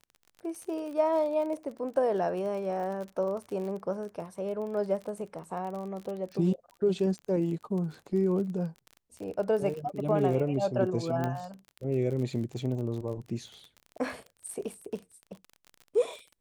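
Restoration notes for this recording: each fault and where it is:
surface crackle 35 per second −37 dBFS
0:11.24: click −19 dBFS

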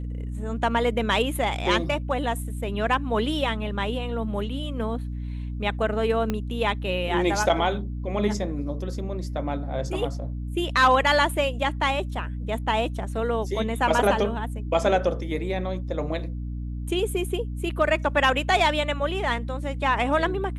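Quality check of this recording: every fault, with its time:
mains hum 60 Hz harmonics 5 −31 dBFS
0:06.30: click −13 dBFS

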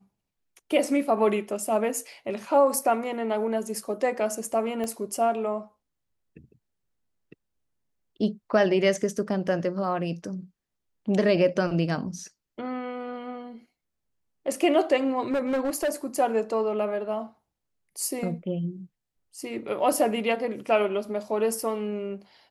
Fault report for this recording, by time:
0:04.84: click −20 dBFS
0:15.31–0:15.90: clipping −22 dBFS

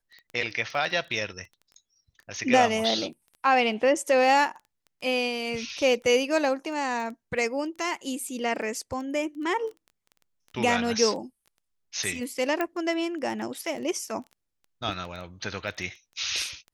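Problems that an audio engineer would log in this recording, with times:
surface crackle 11 per second −35 dBFS
0:12.61: click −14 dBFS

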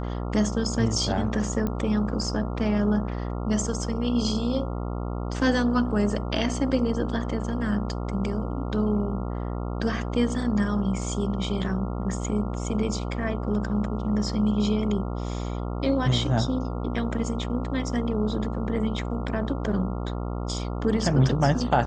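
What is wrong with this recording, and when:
mains buzz 60 Hz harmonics 23 −30 dBFS
0:01.67: click −16 dBFS

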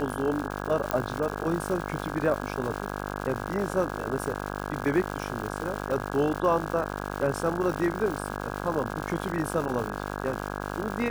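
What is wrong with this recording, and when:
mains buzz 50 Hz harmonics 33 −34 dBFS
surface crackle 280 per second −32 dBFS
0:00.91: click −10 dBFS

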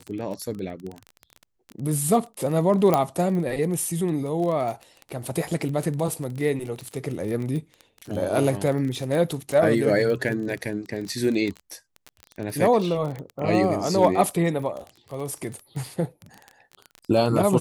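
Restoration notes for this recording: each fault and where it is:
surface crackle 22 per second −28 dBFS
0:02.94: click −7 dBFS

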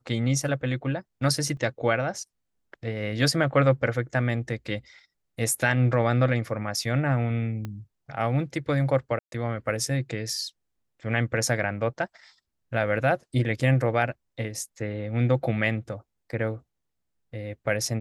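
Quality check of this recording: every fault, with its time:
0:01.57: drop-out 2.2 ms
0:07.65: click −21 dBFS
0:09.19–0:09.32: drop-out 132 ms

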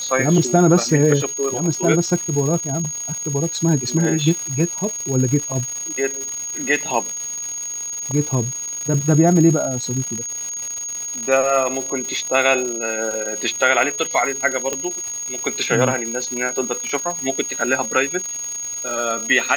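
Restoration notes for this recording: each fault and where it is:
surface crackle 330 per second −25 dBFS
whistle 6,600 Hz −25 dBFS
0:14.73: click −8 dBFS

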